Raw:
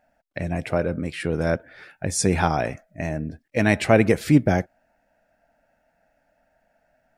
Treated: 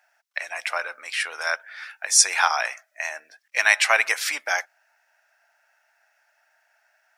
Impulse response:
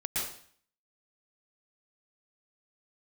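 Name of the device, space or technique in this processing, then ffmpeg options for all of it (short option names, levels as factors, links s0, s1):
headphones lying on a table: -af "highpass=f=1000:w=0.5412,highpass=f=1000:w=1.3066,equalizer=f=5700:t=o:w=0.38:g=5.5,volume=2.37"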